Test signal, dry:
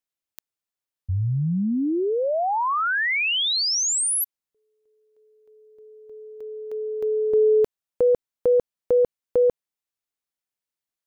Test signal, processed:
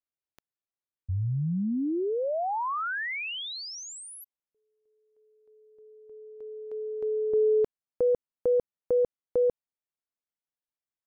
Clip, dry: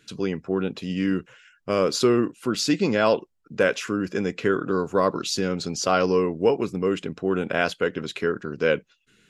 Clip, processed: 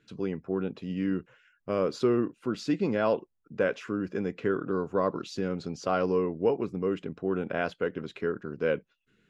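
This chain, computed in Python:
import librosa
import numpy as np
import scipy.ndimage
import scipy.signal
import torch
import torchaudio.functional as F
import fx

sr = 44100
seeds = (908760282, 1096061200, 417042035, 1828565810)

y = fx.lowpass(x, sr, hz=1400.0, slope=6)
y = y * 10.0 ** (-5.0 / 20.0)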